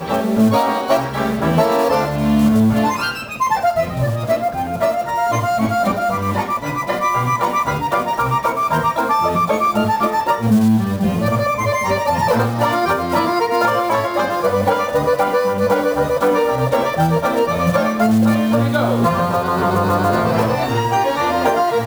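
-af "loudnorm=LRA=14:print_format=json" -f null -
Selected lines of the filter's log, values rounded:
"input_i" : "-17.0",
"input_tp" : "-5.2",
"input_lra" : "2.2",
"input_thresh" : "-27.0",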